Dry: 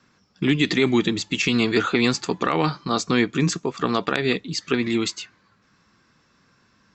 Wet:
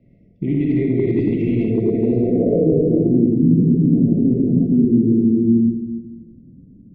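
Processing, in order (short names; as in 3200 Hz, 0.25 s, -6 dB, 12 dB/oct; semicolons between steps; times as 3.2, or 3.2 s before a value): reverse delay 0.303 s, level -1.5 dB; brick-wall FIR band-stop 710–1900 Hz; tilt -3.5 dB/oct; reverb RT60 1.2 s, pre-delay 38 ms, DRR -3.5 dB; reverse; compressor 4:1, threshold -17 dBFS, peak gain reduction 12.5 dB; reverse; low-pass sweep 1400 Hz -> 250 Hz, 1.54–3.4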